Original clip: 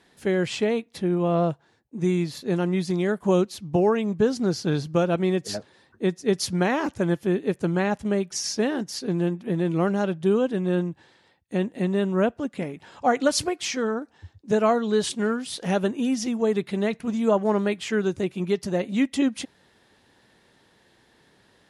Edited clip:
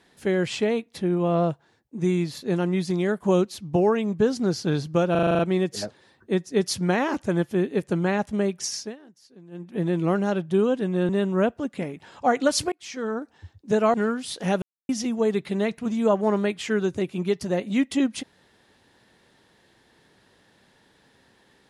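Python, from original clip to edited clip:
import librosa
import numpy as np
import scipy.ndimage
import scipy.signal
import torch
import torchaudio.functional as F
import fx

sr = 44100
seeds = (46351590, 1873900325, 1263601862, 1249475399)

y = fx.edit(x, sr, fx.stutter(start_s=5.11, slice_s=0.04, count=8),
    fx.fade_down_up(start_s=8.38, length_s=1.15, db=-22.5, fade_s=0.3),
    fx.cut(start_s=10.81, length_s=1.08),
    fx.fade_in_span(start_s=13.52, length_s=0.49),
    fx.cut(start_s=14.74, length_s=0.42),
    fx.silence(start_s=15.84, length_s=0.27), tone=tone)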